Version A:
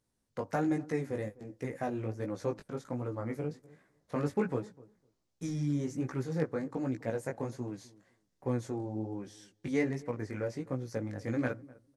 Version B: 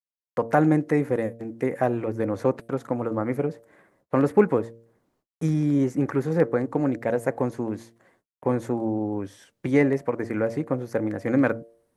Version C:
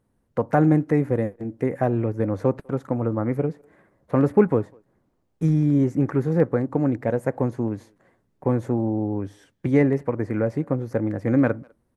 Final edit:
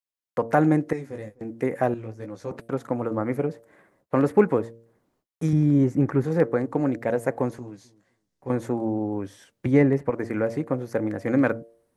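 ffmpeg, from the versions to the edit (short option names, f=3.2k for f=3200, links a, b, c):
-filter_complex "[0:a]asplit=3[a][b][c];[2:a]asplit=2[d][e];[1:a]asplit=6[f][g][h][i][j][k];[f]atrim=end=0.932[l];[a]atrim=start=0.928:end=1.412[m];[g]atrim=start=1.408:end=1.942[n];[b]atrim=start=1.938:end=2.512[o];[h]atrim=start=2.508:end=5.532[p];[d]atrim=start=5.528:end=6.242[q];[i]atrim=start=6.238:end=7.592[r];[c]atrim=start=7.588:end=8.502[s];[j]atrim=start=8.498:end=9.662[t];[e]atrim=start=9.658:end=10.102[u];[k]atrim=start=10.098[v];[l][m]acrossfade=d=0.004:c1=hsin:c2=hsin[w];[w][n]acrossfade=d=0.004:c1=hsin:c2=hsin[x];[x][o]acrossfade=d=0.004:c1=hsin:c2=hsin[y];[y][p]acrossfade=d=0.004:c1=hsin:c2=hsin[z];[z][q]acrossfade=d=0.004:c1=hsin:c2=hsin[aa];[aa][r]acrossfade=d=0.004:c1=hsin:c2=hsin[ab];[ab][s]acrossfade=d=0.004:c1=hsin:c2=hsin[ac];[ac][t]acrossfade=d=0.004:c1=hsin:c2=hsin[ad];[ad][u]acrossfade=d=0.004:c1=hsin:c2=hsin[ae];[ae][v]acrossfade=d=0.004:c1=hsin:c2=hsin"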